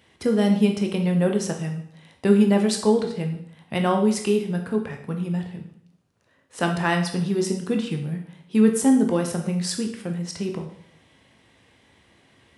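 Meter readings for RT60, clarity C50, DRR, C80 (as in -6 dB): 0.65 s, 8.0 dB, 3.0 dB, 11.0 dB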